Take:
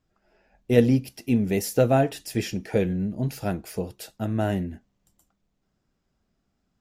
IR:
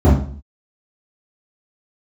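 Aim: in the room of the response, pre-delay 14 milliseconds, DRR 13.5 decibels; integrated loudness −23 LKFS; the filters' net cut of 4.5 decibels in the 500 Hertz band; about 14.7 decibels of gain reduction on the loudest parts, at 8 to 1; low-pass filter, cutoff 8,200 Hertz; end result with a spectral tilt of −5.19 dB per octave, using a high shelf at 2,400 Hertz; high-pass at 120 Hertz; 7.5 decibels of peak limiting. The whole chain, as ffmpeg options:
-filter_complex "[0:a]highpass=120,lowpass=8200,equalizer=frequency=500:width_type=o:gain=-6,highshelf=frequency=2400:gain=8.5,acompressor=threshold=-31dB:ratio=8,alimiter=level_in=3.5dB:limit=-24dB:level=0:latency=1,volume=-3.5dB,asplit=2[link_01][link_02];[1:a]atrim=start_sample=2205,adelay=14[link_03];[link_02][link_03]afir=irnorm=-1:irlink=0,volume=-37.5dB[link_04];[link_01][link_04]amix=inputs=2:normalize=0,volume=12dB"

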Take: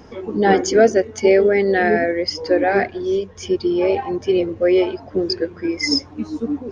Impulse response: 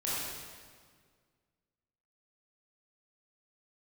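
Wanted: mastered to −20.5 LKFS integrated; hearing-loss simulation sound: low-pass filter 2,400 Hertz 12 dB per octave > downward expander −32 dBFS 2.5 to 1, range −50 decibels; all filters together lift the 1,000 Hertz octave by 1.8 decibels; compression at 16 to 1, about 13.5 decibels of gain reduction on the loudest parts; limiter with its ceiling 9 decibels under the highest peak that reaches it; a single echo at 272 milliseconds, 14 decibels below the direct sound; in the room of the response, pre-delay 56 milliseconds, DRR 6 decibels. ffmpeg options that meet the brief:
-filter_complex "[0:a]equalizer=frequency=1000:width_type=o:gain=3,acompressor=threshold=-21dB:ratio=16,alimiter=limit=-21dB:level=0:latency=1,aecho=1:1:272:0.2,asplit=2[link_01][link_02];[1:a]atrim=start_sample=2205,adelay=56[link_03];[link_02][link_03]afir=irnorm=-1:irlink=0,volume=-12.5dB[link_04];[link_01][link_04]amix=inputs=2:normalize=0,lowpass=2400,agate=range=-50dB:threshold=-32dB:ratio=2.5,volume=8.5dB"

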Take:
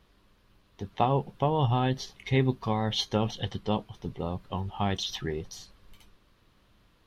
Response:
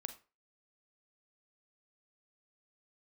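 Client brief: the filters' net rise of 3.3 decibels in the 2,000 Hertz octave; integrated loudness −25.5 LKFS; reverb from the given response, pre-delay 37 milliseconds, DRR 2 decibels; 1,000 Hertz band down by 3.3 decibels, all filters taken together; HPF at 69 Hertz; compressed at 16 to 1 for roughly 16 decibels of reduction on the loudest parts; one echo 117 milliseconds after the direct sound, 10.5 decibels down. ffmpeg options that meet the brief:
-filter_complex "[0:a]highpass=69,equalizer=frequency=1000:width_type=o:gain=-5.5,equalizer=frequency=2000:width_type=o:gain=5,acompressor=threshold=-37dB:ratio=16,aecho=1:1:117:0.299,asplit=2[link_01][link_02];[1:a]atrim=start_sample=2205,adelay=37[link_03];[link_02][link_03]afir=irnorm=-1:irlink=0,volume=1dB[link_04];[link_01][link_04]amix=inputs=2:normalize=0,volume=15dB"

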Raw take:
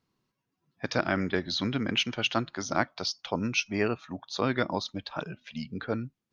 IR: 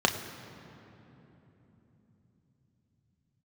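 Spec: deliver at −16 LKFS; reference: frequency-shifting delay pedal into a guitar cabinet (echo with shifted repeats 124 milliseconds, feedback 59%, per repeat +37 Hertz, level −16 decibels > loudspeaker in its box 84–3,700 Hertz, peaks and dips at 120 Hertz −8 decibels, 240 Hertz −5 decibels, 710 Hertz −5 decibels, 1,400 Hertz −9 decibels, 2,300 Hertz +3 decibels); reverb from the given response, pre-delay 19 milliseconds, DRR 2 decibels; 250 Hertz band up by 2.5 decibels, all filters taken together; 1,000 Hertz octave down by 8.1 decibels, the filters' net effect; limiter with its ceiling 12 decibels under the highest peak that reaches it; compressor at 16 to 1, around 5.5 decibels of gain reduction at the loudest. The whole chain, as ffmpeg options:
-filter_complex "[0:a]equalizer=frequency=250:width_type=o:gain=7,equalizer=frequency=1000:width_type=o:gain=-6,acompressor=threshold=-25dB:ratio=16,alimiter=level_in=2dB:limit=-24dB:level=0:latency=1,volume=-2dB,asplit=2[link_01][link_02];[1:a]atrim=start_sample=2205,adelay=19[link_03];[link_02][link_03]afir=irnorm=-1:irlink=0,volume=-15.5dB[link_04];[link_01][link_04]amix=inputs=2:normalize=0,asplit=7[link_05][link_06][link_07][link_08][link_09][link_10][link_11];[link_06]adelay=124,afreqshift=37,volume=-16dB[link_12];[link_07]adelay=248,afreqshift=74,volume=-20.6dB[link_13];[link_08]adelay=372,afreqshift=111,volume=-25.2dB[link_14];[link_09]adelay=496,afreqshift=148,volume=-29.7dB[link_15];[link_10]adelay=620,afreqshift=185,volume=-34.3dB[link_16];[link_11]adelay=744,afreqshift=222,volume=-38.9dB[link_17];[link_05][link_12][link_13][link_14][link_15][link_16][link_17]amix=inputs=7:normalize=0,highpass=84,equalizer=frequency=120:width_type=q:width=4:gain=-8,equalizer=frequency=240:width_type=q:width=4:gain=-5,equalizer=frequency=710:width_type=q:width=4:gain=-5,equalizer=frequency=1400:width_type=q:width=4:gain=-9,equalizer=frequency=2300:width_type=q:width=4:gain=3,lowpass=frequency=3700:width=0.5412,lowpass=frequency=3700:width=1.3066,volume=20.5dB"

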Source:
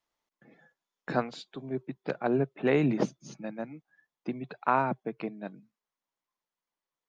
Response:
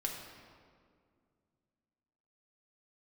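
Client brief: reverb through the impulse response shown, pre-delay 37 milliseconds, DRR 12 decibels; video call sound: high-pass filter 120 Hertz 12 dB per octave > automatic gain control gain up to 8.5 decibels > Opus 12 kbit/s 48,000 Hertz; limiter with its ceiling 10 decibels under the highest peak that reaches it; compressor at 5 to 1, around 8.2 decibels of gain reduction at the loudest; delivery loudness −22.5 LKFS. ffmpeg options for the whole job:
-filter_complex "[0:a]acompressor=threshold=-29dB:ratio=5,alimiter=level_in=2dB:limit=-24dB:level=0:latency=1,volume=-2dB,asplit=2[link_01][link_02];[1:a]atrim=start_sample=2205,adelay=37[link_03];[link_02][link_03]afir=irnorm=-1:irlink=0,volume=-14dB[link_04];[link_01][link_04]amix=inputs=2:normalize=0,highpass=120,dynaudnorm=maxgain=8.5dB,volume=17dB" -ar 48000 -c:a libopus -b:a 12k

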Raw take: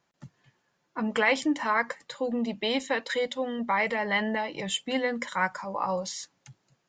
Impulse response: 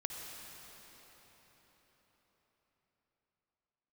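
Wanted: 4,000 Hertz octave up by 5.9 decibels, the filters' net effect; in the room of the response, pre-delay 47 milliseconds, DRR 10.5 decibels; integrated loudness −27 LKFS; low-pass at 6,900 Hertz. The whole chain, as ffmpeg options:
-filter_complex "[0:a]lowpass=6900,equalizer=frequency=4000:width_type=o:gain=8.5,asplit=2[link_01][link_02];[1:a]atrim=start_sample=2205,adelay=47[link_03];[link_02][link_03]afir=irnorm=-1:irlink=0,volume=-11dB[link_04];[link_01][link_04]amix=inputs=2:normalize=0"

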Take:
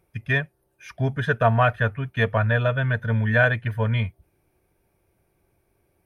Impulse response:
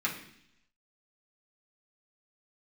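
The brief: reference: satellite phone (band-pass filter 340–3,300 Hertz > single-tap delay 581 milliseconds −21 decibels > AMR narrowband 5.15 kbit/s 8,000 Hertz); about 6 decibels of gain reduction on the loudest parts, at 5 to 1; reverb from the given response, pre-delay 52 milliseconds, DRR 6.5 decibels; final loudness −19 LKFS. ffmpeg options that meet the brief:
-filter_complex "[0:a]acompressor=threshold=-20dB:ratio=5,asplit=2[link_01][link_02];[1:a]atrim=start_sample=2205,adelay=52[link_03];[link_02][link_03]afir=irnorm=-1:irlink=0,volume=-14dB[link_04];[link_01][link_04]amix=inputs=2:normalize=0,highpass=340,lowpass=3300,aecho=1:1:581:0.0891,volume=12dB" -ar 8000 -c:a libopencore_amrnb -b:a 5150

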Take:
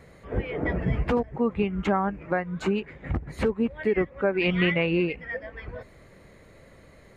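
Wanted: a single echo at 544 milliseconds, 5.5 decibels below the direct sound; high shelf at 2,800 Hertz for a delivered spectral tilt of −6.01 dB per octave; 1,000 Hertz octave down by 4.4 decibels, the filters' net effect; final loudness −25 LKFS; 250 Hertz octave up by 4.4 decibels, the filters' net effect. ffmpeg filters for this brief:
ffmpeg -i in.wav -af "equalizer=frequency=250:width_type=o:gain=6.5,equalizer=frequency=1000:width_type=o:gain=-6,highshelf=frequency=2800:gain=-5.5,aecho=1:1:544:0.531,volume=-1dB" out.wav

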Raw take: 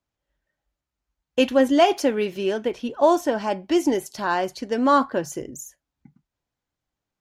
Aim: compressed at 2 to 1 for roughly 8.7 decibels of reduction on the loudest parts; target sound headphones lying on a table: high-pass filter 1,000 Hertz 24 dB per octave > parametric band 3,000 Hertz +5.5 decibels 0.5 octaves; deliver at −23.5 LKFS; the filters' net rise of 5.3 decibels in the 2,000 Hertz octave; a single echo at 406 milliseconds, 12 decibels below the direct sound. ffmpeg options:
ffmpeg -i in.wav -af "equalizer=frequency=2000:width_type=o:gain=5.5,acompressor=threshold=-28dB:ratio=2,highpass=frequency=1000:width=0.5412,highpass=frequency=1000:width=1.3066,equalizer=frequency=3000:width_type=o:width=0.5:gain=5.5,aecho=1:1:406:0.251,volume=9.5dB" out.wav

